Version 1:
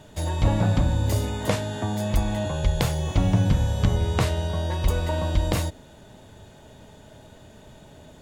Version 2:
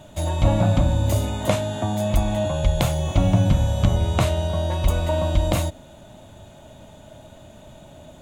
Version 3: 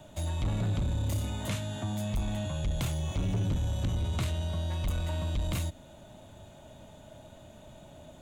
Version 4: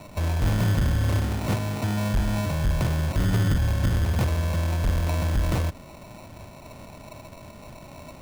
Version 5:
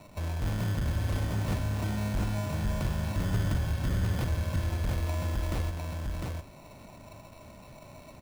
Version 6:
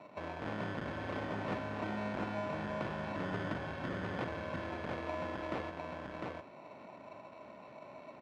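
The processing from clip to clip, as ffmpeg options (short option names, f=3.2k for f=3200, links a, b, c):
-af "superequalizer=7b=0.501:8b=1.58:11b=0.631:14b=0.562,volume=2.5dB"
-filter_complex "[0:a]acrossover=split=280|1200|5200[a][b][c][d];[b]acompressor=threshold=-37dB:ratio=6[e];[a][e][c][d]amix=inputs=4:normalize=0,asoftclip=type=tanh:threshold=-19dB,volume=-6dB"
-af "acrusher=samples=27:mix=1:aa=0.000001,volume=7.5dB"
-af "aecho=1:1:703:0.708,volume=-8dB"
-af "highpass=290,lowpass=2.3k,volume=1dB"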